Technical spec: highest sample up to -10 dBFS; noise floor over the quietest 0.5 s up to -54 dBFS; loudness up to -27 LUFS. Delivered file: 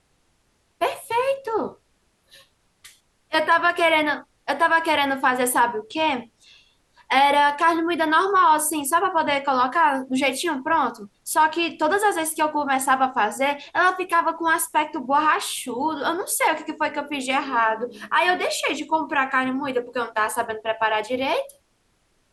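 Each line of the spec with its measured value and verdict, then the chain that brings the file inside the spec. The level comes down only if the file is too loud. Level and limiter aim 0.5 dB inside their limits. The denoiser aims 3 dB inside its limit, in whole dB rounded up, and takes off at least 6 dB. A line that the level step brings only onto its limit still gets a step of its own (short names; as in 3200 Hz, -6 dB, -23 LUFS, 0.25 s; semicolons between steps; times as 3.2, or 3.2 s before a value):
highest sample -6.5 dBFS: fail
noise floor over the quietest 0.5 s -66 dBFS: OK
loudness -21.5 LUFS: fail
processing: gain -6 dB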